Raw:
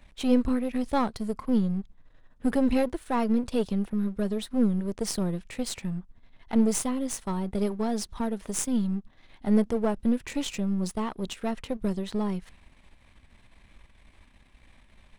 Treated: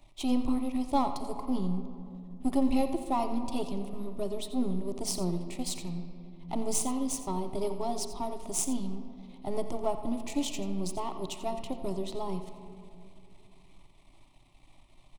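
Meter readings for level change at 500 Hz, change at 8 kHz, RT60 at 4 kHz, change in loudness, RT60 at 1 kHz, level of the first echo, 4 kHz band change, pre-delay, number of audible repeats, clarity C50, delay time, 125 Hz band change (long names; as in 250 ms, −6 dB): −4.0 dB, 0.0 dB, 1.3 s, −5.0 dB, 2.3 s, −13.0 dB, −1.5 dB, 29 ms, 1, 8.0 dB, 87 ms, −6.0 dB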